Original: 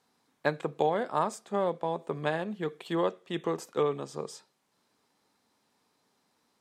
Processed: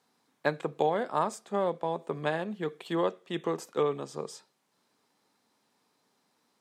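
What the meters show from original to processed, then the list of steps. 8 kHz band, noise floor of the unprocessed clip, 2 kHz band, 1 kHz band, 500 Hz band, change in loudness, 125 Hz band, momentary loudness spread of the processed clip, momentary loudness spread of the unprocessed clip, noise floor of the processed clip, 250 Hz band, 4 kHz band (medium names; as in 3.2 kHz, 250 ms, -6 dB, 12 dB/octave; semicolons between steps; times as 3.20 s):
0.0 dB, -75 dBFS, 0.0 dB, 0.0 dB, 0.0 dB, 0.0 dB, -1.0 dB, 8 LU, 8 LU, -75 dBFS, 0.0 dB, 0.0 dB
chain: high-pass 110 Hz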